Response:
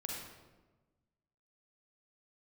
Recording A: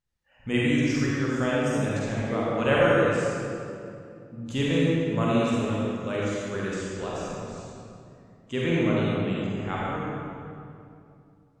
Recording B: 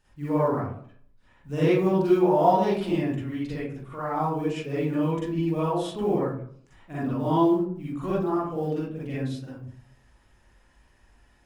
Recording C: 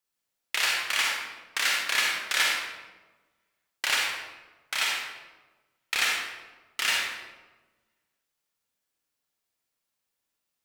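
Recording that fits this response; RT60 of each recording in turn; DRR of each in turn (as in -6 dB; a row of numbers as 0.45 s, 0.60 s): C; 2.6 s, 0.55 s, 1.2 s; -7.0 dB, -9.5 dB, -2.0 dB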